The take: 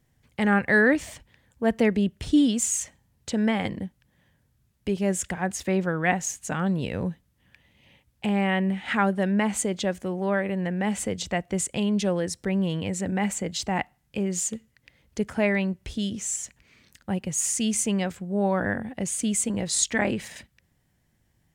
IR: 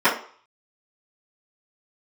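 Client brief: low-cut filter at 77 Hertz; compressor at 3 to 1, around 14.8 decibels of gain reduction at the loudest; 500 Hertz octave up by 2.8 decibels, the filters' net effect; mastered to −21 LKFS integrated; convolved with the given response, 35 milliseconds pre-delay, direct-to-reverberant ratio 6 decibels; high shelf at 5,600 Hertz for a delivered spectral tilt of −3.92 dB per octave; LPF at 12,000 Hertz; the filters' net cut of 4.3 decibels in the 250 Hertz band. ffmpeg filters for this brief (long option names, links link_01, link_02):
-filter_complex "[0:a]highpass=77,lowpass=12000,equalizer=frequency=250:width_type=o:gain=-7,equalizer=frequency=500:width_type=o:gain=5.5,highshelf=frequency=5600:gain=-6.5,acompressor=threshold=-36dB:ratio=3,asplit=2[link_01][link_02];[1:a]atrim=start_sample=2205,adelay=35[link_03];[link_02][link_03]afir=irnorm=-1:irlink=0,volume=-27.5dB[link_04];[link_01][link_04]amix=inputs=2:normalize=0,volume=15.5dB"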